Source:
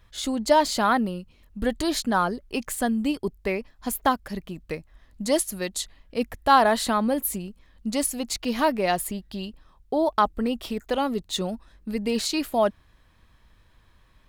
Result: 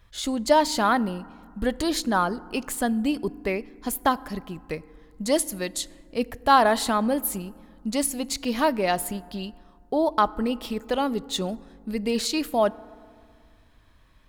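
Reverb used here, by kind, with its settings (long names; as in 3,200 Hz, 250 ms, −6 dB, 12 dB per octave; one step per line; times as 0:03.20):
feedback delay network reverb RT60 2.1 s, low-frequency decay 1.25×, high-frequency decay 0.35×, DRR 19 dB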